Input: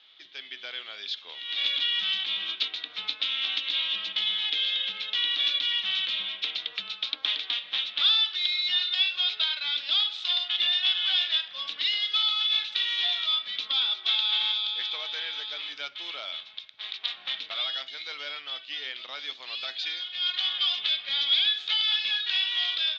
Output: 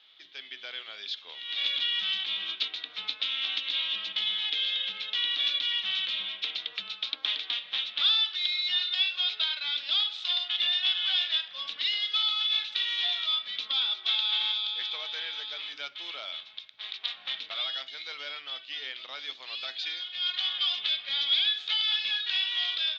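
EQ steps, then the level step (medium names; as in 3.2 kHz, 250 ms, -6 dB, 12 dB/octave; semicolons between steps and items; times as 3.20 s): hum notches 60/120/180/240/300/360 Hz; -2.0 dB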